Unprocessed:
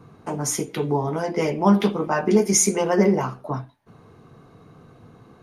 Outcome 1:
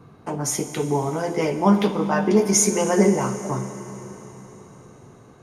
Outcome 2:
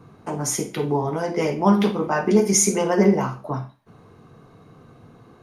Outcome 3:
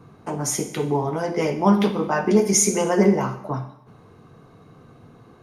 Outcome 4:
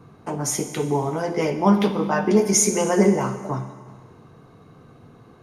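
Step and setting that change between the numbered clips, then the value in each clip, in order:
Schroeder reverb, RT60: 4.3, 0.31, 0.75, 1.7 s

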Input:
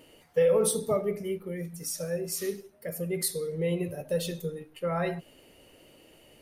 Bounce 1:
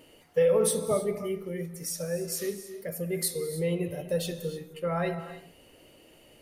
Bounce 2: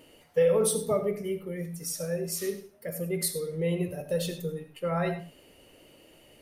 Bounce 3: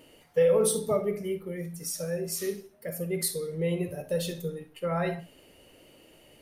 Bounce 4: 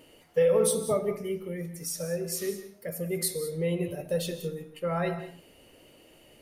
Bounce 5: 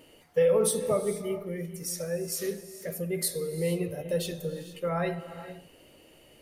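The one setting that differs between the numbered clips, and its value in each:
non-linear reverb, gate: 330, 120, 80, 220, 490 ms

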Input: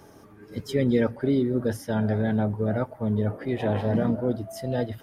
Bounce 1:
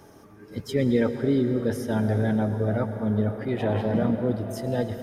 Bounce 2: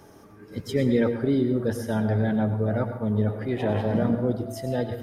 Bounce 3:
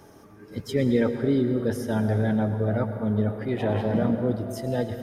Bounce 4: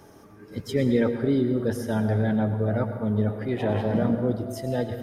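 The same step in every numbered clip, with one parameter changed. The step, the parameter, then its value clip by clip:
plate-style reverb, RT60: 5.2, 0.55, 2.5, 1.2 s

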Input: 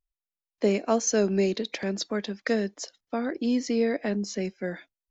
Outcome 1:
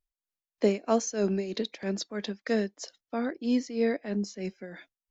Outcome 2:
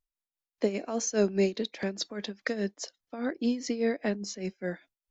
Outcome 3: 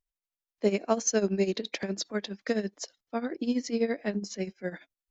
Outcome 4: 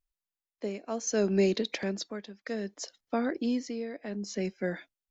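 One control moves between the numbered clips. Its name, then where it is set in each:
tremolo, rate: 3.1, 4.9, 12, 0.64 Hz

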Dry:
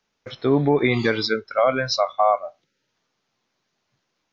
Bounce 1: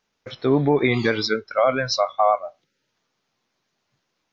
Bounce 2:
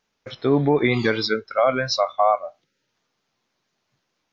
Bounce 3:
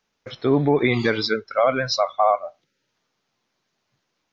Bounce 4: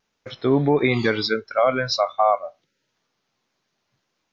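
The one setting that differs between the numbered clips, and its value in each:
vibrato, rate: 7.4, 4.4, 15, 1.5 Hz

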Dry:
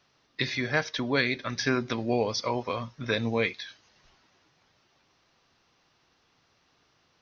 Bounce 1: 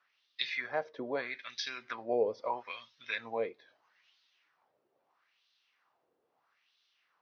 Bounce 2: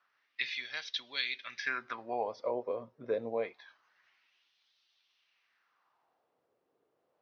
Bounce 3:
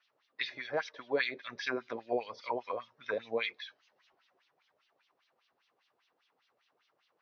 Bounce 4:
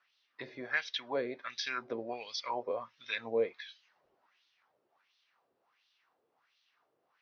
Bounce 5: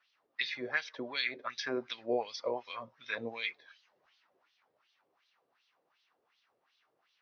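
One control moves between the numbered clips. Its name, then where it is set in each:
wah, rate: 0.77, 0.26, 5, 1.4, 2.7 Hz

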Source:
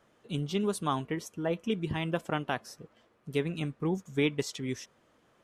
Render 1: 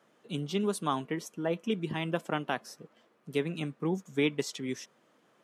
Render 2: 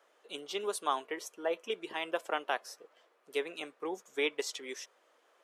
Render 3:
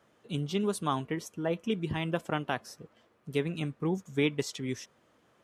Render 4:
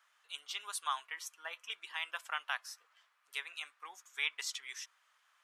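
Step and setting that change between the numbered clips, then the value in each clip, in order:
HPF, cutoff: 150, 420, 55, 1100 Hz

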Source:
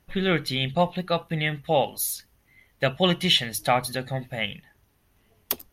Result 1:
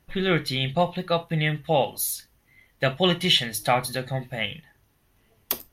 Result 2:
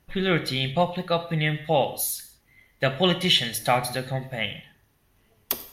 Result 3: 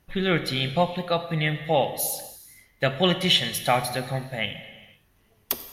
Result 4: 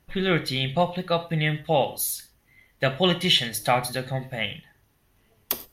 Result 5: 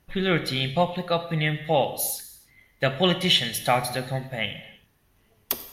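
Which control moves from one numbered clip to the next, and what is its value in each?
non-linear reverb, gate: 90, 230, 530, 150, 350 ms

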